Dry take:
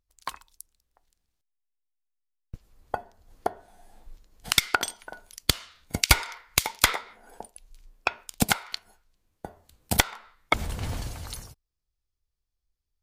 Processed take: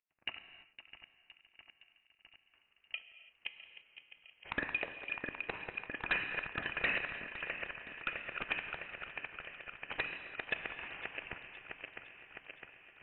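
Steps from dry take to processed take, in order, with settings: backward echo that repeats 329 ms, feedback 82%, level -13.5 dB; steep high-pass 1.2 kHz 36 dB/octave; tilt EQ -4 dB/octave; in parallel at -2 dB: peak limiter -21 dBFS, peak gain reduction 11.5 dB; on the sum: hard clipper -22 dBFS, distortion -6 dB; on a send: tape echo 513 ms, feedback 71%, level -11.5 dB, low-pass 2.4 kHz; on the sum: gated-style reverb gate 360 ms flat, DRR 10.5 dB; frequency inversion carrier 3.9 kHz; trim -4 dB

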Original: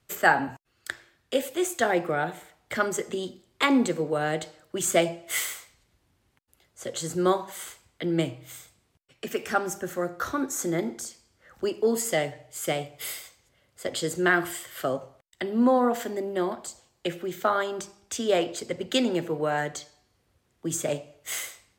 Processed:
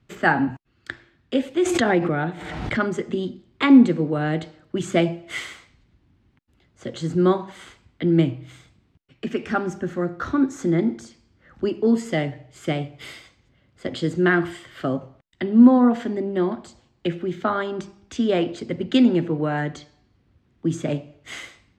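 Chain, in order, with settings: low-pass 3.7 kHz 12 dB/octave; resonant low shelf 370 Hz +7.5 dB, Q 1.5; 1.57–2.78 s: swell ahead of each attack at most 33 dB/s; trim +1.5 dB

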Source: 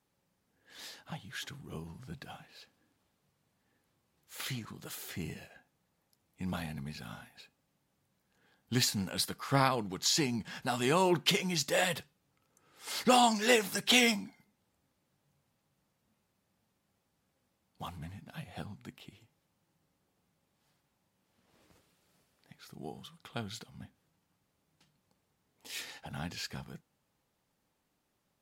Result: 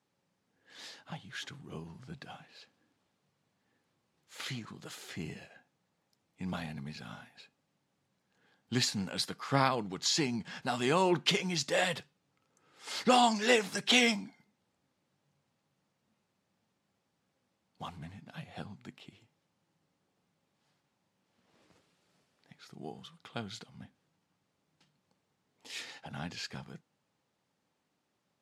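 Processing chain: band-pass 110–7400 Hz

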